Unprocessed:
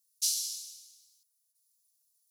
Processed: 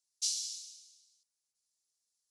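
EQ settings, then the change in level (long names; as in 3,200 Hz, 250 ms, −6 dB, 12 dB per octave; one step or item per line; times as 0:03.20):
low-pass filter 8,300 Hz 24 dB per octave
low-shelf EQ 77 Hz +5.5 dB
−2.5 dB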